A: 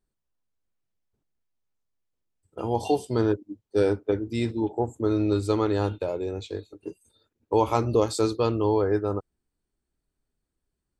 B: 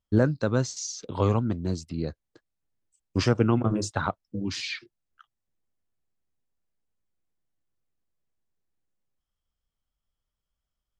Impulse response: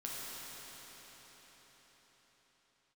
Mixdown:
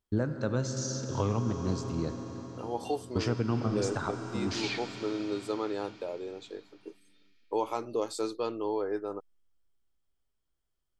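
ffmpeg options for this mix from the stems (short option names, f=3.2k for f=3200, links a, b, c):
-filter_complex "[0:a]highpass=280,volume=-7.5dB[a];[1:a]volume=-5dB,asplit=2[b][c];[c]volume=-5dB[d];[2:a]atrim=start_sample=2205[e];[d][e]afir=irnorm=-1:irlink=0[f];[a][b][f]amix=inputs=3:normalize=0,alimiter=limit=-18dB:level=0:latency=1:release=435"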